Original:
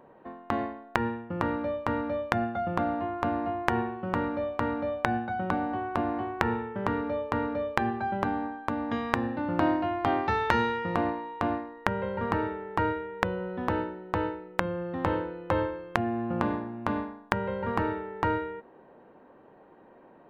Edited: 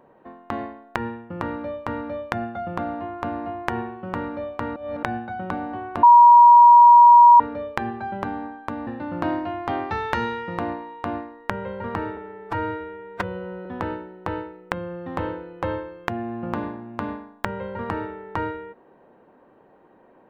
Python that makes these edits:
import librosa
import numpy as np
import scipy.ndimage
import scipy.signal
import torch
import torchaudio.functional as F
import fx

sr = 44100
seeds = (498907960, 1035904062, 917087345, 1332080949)

y = fx.edit(x, sr, fx.reverse_span(start_s=4.76, length_s=0.27),
    fx.bleep(start_s=6.03, length_s=1.37, hz=956.0, db=-6.5),
    fx.cut(start_s=8.87, length_s=0.37),
    fx.stretch_span(start_s=12.54, length_s=0.99, factor=1.5), tone=tone)